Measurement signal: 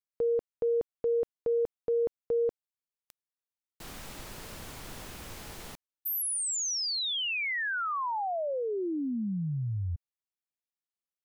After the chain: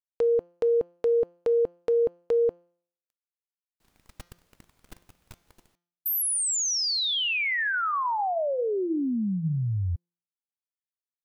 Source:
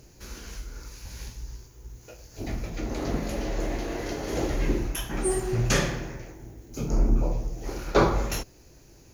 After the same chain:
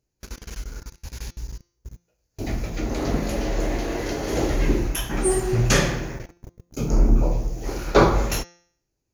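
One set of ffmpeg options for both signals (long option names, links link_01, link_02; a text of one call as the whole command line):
ffmpeg -i in.wav -af "agate=range=-31dB:threshold=-41dB:ratio=16:release=30:detection=rms,bandreject=frequency=173.3:width_type=h:width=4,bandreject=frequency=346.6:width_type=h:width=4,bandreject=frequency=519.9:width_type=h:width=4,bandreject=frequency=693.2:width_type=h:width=4,bandreject=frequency=866.5:width_type=h:width=4,bandreject=frequency=1039.8:width_type=h:width=4,bandreject=frequency=1213.1:width_type=h:width=4,bandreject=frequency=1386.4:width_type=h:width=4,bandreject=frequency=1559.7:width_type=h:width=4,bandreject=frequency=1733:width_type=h:width=4,bandreject=frequency=1906.3:width_type=h:width=4,bandreject=frequency=2079.6:width_type=h:width=4,bandreject=frequency=2252.9:width_type=h:width=4,bandreject=frequency=2426.2:width_type=h:width=4,bandreject=frequency=2599.5:width_type=h:width=4,bandreject=frequency=2772.8:width_type=h:width=4,bandreject=frequency=2946.1:width_type=h:width=4,bandreject=frequency=3119.4:width_type=h:width=4,bandreject=frequency=3292.7:width_type=h:width=4,bandreject=frequency=3466:width_type=h:width=4,bandreject=frequency=3639.3:width_type=h:width=4,bandreject=frequency=3812.6:width_type=h:width=4,bandreject=frequency=3985.9:width_type=h:width=4,bandreject=frequency=4159.2:width_type=h:width=4,bandreject=frequency=4332.5:width_type=h:width=4,bandreject=frequency=4505.8:width_type=h:width=4,bandreject=frequency=4679.1:width_type=h:width=4,bandreject=frequency=4852.4:width_type=h:width=4,bandreject=frequency=5025.7:width_type=h:width=4,bandreject=frequency=5199:width_type=h:width=4,bandreject=frequency=5372.3:width_type=h:width=4,bandreject=frequency=5545.6:width_type=h:width=4,bandreject=frequency=5718.9:width_type=h:width=4,bandreject=frequency=5892.2:width_type=h:width=4,bandreject=frequency=6065.5:width_type=h:width=4,bandreject=frequency=6238.8:width_type=h:width=4,bandreject=frequency=6412.1:width_type=h:width=4,bandreject=frequency=6585.4:width_type=h:width=4,volume=5dB" out.wav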